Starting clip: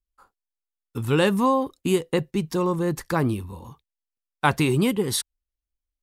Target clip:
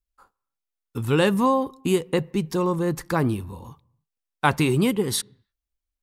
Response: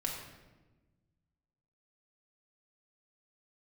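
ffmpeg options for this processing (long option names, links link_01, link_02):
-filter_complex "[0:a]asplit=2[link_01][link_02];[1:a]atrim=start_sample=2205,afade=type=out:start_time=0.37:duration=0.01,atrim=end_sample=16758,lowpass=2400[link_03];[link_02][link_03]afir=irnorm=-1:irlink=0,volume=-24.5dB[link_04];[link_01][link_04]amix=inputs=2:normalize=0"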